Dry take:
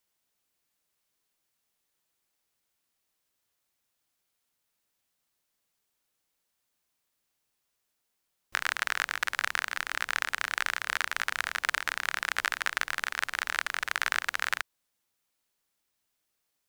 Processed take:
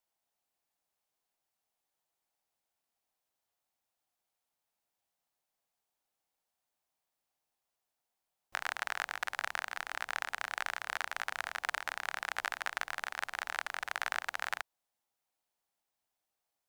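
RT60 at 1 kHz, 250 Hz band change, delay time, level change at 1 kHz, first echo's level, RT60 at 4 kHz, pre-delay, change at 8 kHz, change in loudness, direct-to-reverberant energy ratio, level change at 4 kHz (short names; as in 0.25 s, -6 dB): none, -7.5 dB, none, -4.0 dB, none, none, none, -8.5 dB, -7.0 dB, none, -8.5 dB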